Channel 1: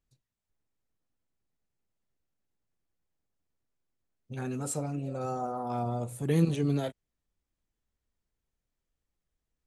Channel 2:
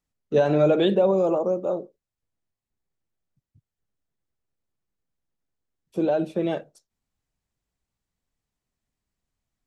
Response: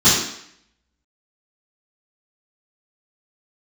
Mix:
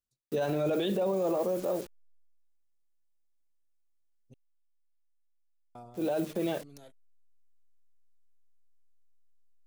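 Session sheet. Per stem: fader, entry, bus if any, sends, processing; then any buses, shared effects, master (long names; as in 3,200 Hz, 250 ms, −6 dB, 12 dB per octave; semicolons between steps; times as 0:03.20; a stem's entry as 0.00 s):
−10.0 dB, 0.00 s, muted 0:04.34–0:05.75, no send, bass and treble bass −5 dB, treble +7 dB; brickwall limiter −25 dBFS, peak gain reduction 9.5 dB; automatic ducking −9 dB, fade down 0.25 s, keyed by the second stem
0:02.13 −1.5 dB → 0:02.68 −14 dB → 0:05.68 −14 dB → 0:06.19 −3 dB, 0.00 s, no send, hold until the input has moved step −43 dBFS; high-shelf EQ 3,200 Hz +9 dB; transient designer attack −4 dB, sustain 0 dB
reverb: not used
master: brickwall limiter −22 dBFS, peak gain reduction 11.5 dB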